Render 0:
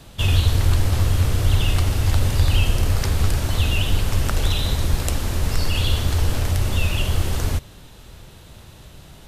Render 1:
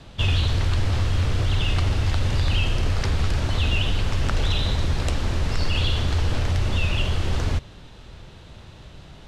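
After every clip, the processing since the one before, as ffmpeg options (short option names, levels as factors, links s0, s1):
-filter_complex "[0:a]lowpass=4900,acrossover=split=1200[s0][s1];[s0]alimiter=limit=0.178:level=0:latency=1:release=24[s2];[s2][s1]amix=inputs=2:normalize=0"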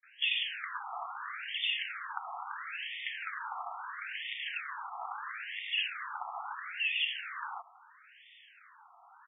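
-filter_complex "[0:a]acrossover=split=5100[s0][s1];[s0]adelay=30[s2];[s2][s1]amix=inputs=2:normalize=0,afftfilt=real='re*between(b*sr/1024,950*pow(2600/950,0.5+0.5*sin(2*PI*0.75*pts/sr))/1.41,950*pow(2600/950,0.5+0.5*sin(2*PI*0.75*pts/sr))*1.41)':imag='im*between(b*sr/1024,950*pow(2600/950,0.5+0.5*sin(2*PI*0.75*pts/sr))/1.41,950*pow(2600/950,0.5+0.5*sin(2*PI*0.75*pts/sr))*1.41)':win_size=1024:overlap=0.75"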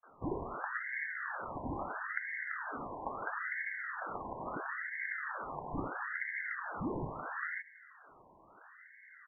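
-af "lowpass=f=2500:t=q:w=0.5098,lowpass=f=2500:t=q:w=0.6013,lowpass=f=2500:t=q:w=0.9,lowpass=f=2500:t=q:w=2.563,afreqshift=-2900,volume=1.12"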